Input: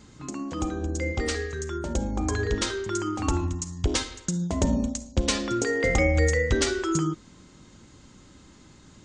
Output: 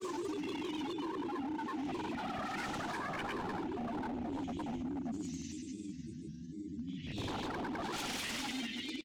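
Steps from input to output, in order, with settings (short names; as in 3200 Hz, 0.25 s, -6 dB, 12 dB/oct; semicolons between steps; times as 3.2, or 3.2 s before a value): band shelf 990 Hz -13 dB; in parallel at -2 dB: compressor, threshold -34 dBFS, peak gain reduction 15 dB; on the sum: Paulstretch 8.1×, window 0.10 s, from 2.95; vowel filter i; wavefolder -38 dBFS; grains, pitch spread up and down by 3 st; on a send: feedback echo 0.105 s, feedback 52%, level -20 dB; on the sum: gain +5 dB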